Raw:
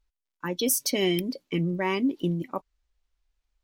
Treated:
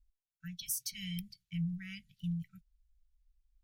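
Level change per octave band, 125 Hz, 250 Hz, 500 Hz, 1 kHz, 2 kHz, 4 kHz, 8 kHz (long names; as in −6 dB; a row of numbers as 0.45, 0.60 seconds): −7.5 dB, −13.5 dB, below −40 dB, below −40 dB, −16.0 dB, −13.0 dB, −11.0 dB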